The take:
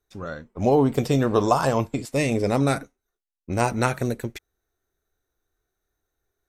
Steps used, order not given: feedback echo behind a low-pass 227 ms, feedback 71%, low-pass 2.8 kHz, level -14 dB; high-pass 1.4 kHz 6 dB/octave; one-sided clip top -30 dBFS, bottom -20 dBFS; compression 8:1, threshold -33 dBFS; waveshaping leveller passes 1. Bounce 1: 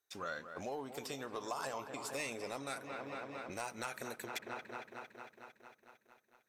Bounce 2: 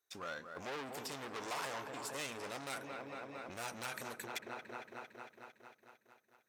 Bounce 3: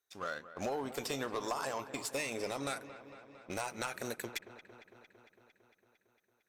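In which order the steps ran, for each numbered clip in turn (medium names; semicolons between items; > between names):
feedback echo behind a low-pass > compression > high-pass > one-sided clip > waveshaping leveller; feedback echo behind a low-pass > one-sided clip > waveshaping leveller > compression > high-pass; high-pass > waveshaping leveller > compression > one-sided clip > feedback echo behind a low-pass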